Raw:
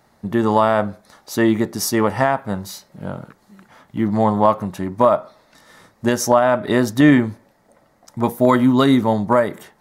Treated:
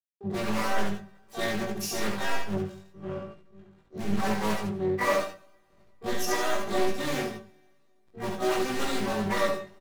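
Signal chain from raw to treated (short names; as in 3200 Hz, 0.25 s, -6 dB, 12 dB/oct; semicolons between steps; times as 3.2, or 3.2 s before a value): Wiener smoothing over 9 samples; dynamic EQ 110 Hz, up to -4 dB, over -35 dBFS, Q 3.4; in parallel at -5.5 dB: wrapped overs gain 13.5 dB; on the sum: flange 0.91 Hz, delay 0.6 ms, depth 4 ms, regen +85%; metallic resonator 190 Hz, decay 0.24 s, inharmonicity 0.002; backlash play -49.5 dBFS; loudspeakers at several distances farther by 24 m -3 dB, 52 m -11 dB; two-slope reverb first 0.74 s, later 3.1 s, from -18 dB, DRR 18 dB; harmoniser -12 st -12 dB, -4 st -16 dB, +12 st -6 dB; doubler 19 ms -2.5 dB; Doppler distortion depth 0.4 ms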